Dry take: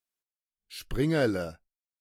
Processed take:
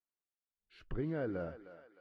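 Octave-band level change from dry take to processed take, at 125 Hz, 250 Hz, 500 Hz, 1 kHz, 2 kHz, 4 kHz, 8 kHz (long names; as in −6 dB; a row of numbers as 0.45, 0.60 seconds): −10.0 dB, −10.5 dB, −10.5 dB, −10.5 dB, −14.0 dB, −22.5 dB, below −30 dB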